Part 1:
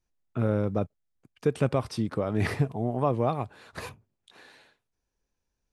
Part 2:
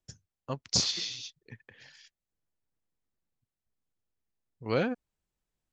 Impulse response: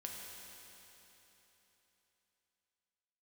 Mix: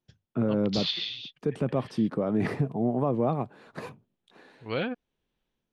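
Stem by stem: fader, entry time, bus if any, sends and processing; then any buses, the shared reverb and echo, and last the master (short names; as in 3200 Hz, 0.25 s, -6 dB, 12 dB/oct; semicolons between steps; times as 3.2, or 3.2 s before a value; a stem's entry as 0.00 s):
-1.0 dB, 0.00 s, no send, HPF 160 Hz 24 dB/oct; tilt -3 dB/oct
-7.0 dB, 0.00 s, no send, resonant high shelf 4800 Hz -12.5 dB, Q 3; AGC gain up to 14 dB; auto duck -8 dB, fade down 1.30 s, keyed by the first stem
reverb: off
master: limiter -16.5 dBFS, peak gain reduction 7 dB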